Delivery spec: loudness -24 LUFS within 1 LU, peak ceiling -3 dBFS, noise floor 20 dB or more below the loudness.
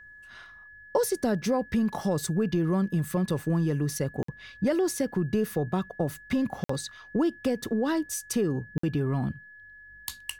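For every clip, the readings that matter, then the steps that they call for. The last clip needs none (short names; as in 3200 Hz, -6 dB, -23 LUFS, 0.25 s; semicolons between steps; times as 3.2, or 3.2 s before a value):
dropouts 3; longest dropout 54 ms; steady tone 1700 Hz; tone level -47 dBFS; loudness -28.5 LUFS; peak -13.0 dBFS; loudness target -24.0 LUFS
-> interpolate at 4.23/6.64/8.78, 54 ms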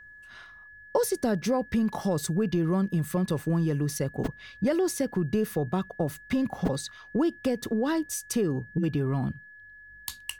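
dropouts 0; steady tone 1700 Hz; tone level -47 dBFS
-> notch 1700 Hz, Q 30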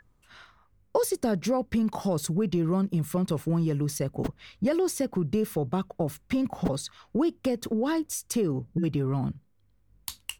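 steady tone none; loudness -28.5 LUFS; peak -12.5 dBFS; loudness target -24.0 LUFS
-> gain +4.5 dB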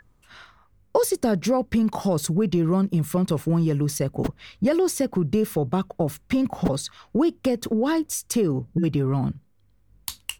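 loudness -24.0 LUFS; peak -8.0 dBFS; noise floor -60 dBFS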